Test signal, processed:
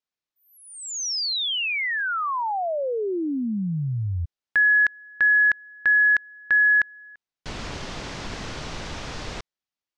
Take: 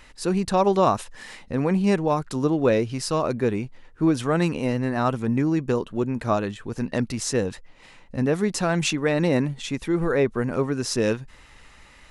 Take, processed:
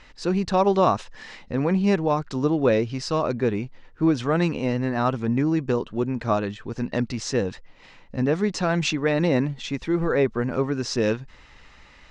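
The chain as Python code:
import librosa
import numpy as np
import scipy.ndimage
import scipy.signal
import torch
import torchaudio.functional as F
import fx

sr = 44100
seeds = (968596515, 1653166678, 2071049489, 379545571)

y = scipy.signal.sosfilt(scipy.signal.butter(4, 6200.0, 'lowpass', fs=sr, output='sos'), x)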